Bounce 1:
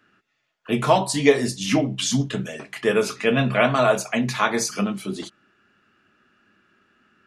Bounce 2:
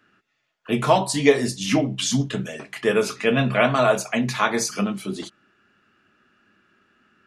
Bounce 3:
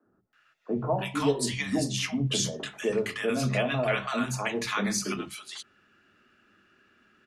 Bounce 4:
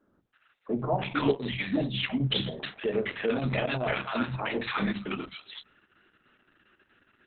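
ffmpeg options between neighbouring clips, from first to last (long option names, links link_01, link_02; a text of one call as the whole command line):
ffmpeg -i in.wav -af anull out.wav
ffmpeg -i in.wav -filter_complex "[0:a]acrossover=split=140[link_01][link_02];[link_02]acompressor=threshold=-28dB:ratio=2[link_03];[link_01][link_03]amix=inputs=2:normalize=0,acrossover=split=190|960[link_04][link_05][link_06];[link_04]adelay=50[link_07];[link_06]adelay=330[link_08];[link_07][link_05][link_08]amix=inputs=3:normalize=0" out.wav
ffmpeg -i in.wav -filter_complex "[0:a]acrossover=split=4100[link_01][link_02];[link_02]aeval=exprs='0.0282*(abs(mod(val(0)/0.0282+3,4)-2)-1)':channel_layout=same[link_03];[link_01][link_03]amix=inputs=2:normalize=0" -ar 48000 -c:a libopus -b:a 6k out.opus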